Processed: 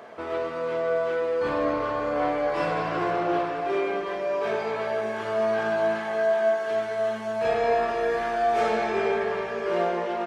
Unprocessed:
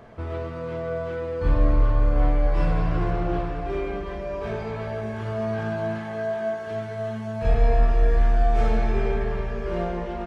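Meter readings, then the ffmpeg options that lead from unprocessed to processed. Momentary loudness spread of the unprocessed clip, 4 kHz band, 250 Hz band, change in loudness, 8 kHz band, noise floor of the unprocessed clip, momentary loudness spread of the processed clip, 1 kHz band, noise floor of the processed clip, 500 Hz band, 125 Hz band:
9 LU, +5.5 dB, -2.0 dB, 0.0 dB, n/a, -33 dBFS, 5 LU, +5.0 dB, -32 dBFS, +4.5 dB, -17.0 dB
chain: -af "highpass=390,volume=5.5dB"

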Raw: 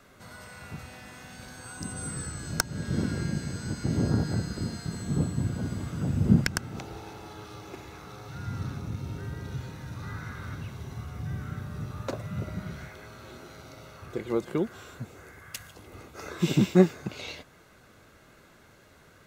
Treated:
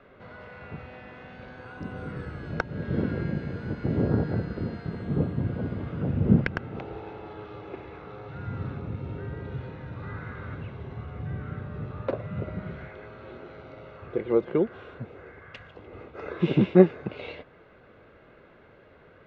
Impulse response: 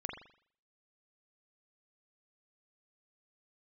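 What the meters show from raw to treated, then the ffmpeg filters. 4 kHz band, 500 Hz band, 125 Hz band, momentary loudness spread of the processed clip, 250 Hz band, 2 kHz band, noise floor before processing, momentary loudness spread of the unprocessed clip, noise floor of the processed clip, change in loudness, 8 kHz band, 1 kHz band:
-8.5 dB, +5.0 dB, +0.5 dB, 20 LU, +1.5 dB, 0.0 dB, -56 dBFS, 20 LU, -54 dBFS, +1.5 dB, under -30 dB, +1.5 dB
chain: -af "lowpass=f=3k:w=0.5412,lowpass=f=3k:w=1.3066,equalizer=f=480:w=1.6:g=7.5"

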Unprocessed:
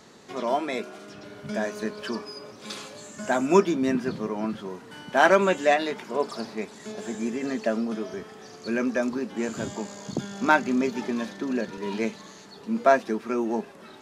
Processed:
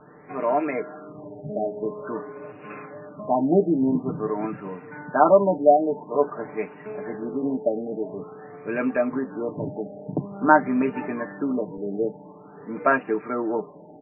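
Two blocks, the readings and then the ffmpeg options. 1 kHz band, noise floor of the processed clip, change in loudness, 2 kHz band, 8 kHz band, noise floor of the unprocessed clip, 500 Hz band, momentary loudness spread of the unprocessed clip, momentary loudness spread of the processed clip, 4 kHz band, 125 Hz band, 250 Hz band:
+3.0 dB, -46 dBFS, +2.0 dB, -2.0 dB, under -40 dB, -47 dBFS, +3.0 dB, 18 LU, 20 LU, under -25 dB, +3.5 dB, +1.5 dB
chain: -filter_complex "[0:a]acrossover=split=2700[a][b];[b]acompressor=threshold=-56dB:ratio=4:attack=1:release=60[c];[a][c]amix=inputs=2:normalize=0,aecho=1:1:6.7:0.75,afftfilt=real='re*lt(b*sr/1024,840*pow(2900/840,0.5+0.5*sin(2*PI*0.48*pts/sr)))':imag='im*lt(b*sr/1024,840*pow(2900/840,0.5+0.5*sin(2*PI*0.48*pts/sr)))':win_size=1024:overlap=0.75,volume=1.5dB"

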